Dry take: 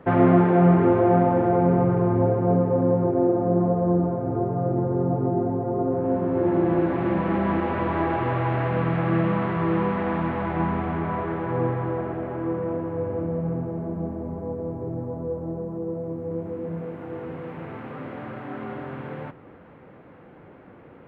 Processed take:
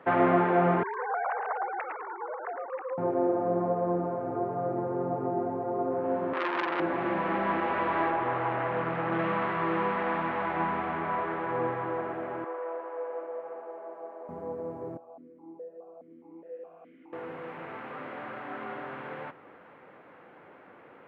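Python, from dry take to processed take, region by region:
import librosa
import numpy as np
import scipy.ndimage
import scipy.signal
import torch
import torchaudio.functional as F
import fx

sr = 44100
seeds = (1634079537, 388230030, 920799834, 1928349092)

y = fx.chain(x, sr, fx.sine_speech(),
    fx.highpass(hz=1200.0, slope=12),
    fx.echo_single(ms=109, db=-5.0), at=(0.83, 2.98))
y = fx.chain(y, sr, fx.highpass(hz=250.0, slope=12),
    fx.transformer_sat(knee_hz=1700.0), at=(6.33, 6.8))
y = fx.chain(y, sr, fx.high_shelf(hz=2800.0, db=-11.0),
    fx.doppler_dist(depth_ms=0.28), at=(8.1, 9.19))
y = fx.chain(y, sr, fx.highpass(hz=470.0, slope=24),
    fx.high_shelf(hz=3200.0, db=-11.0), at=(12.44, 14.29))
y = fx.chain(y, sr, fx.notch(hz=2300.0, q=21.0),
    fx.vowel_held(hz=4.8), at=(14.97, 17.13))
y = fx.highpass(y, sr, hz=1400.0, slope=6)
y = fx.high_shelf(y, sr, hz=3000.0, db=-9.5)
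y = F.gain(torch.from_numpy(y), 5.5).numpy()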